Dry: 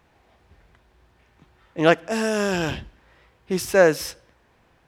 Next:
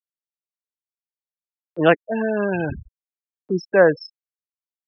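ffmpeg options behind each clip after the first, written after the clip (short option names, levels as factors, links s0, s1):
-filter_complex "[0:a]afftfilt=real='re*gte(hypot(re,im),0.112)':imag='im*gte(hypot(re,im),0.112)':win_size=1024:overlap=0.75,acrossover=split=490|7500[s0][s1][s2];[s1]acompressor=mode=upward:threshold=0.0398:ratio=2.5[s3];[s0][s3][s2]amix=inputs=3:normalize=0,volume=1.19"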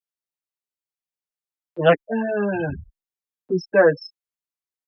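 -filter_complex "[0:a]asplit=2[s0][s1];[s1]adelay=6.6,afreqshift=2.4[s2];[s0][s2]amix=inputs=2:normalize=1,volume=1.26"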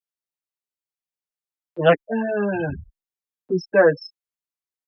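-af anull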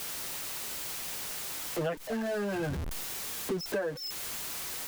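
-af "aeval=exprs='val(0)+0.5*0.075*sgn(val(0))':c=same,acompressor=threshold=0.0631:ratio=10,volume=0.531"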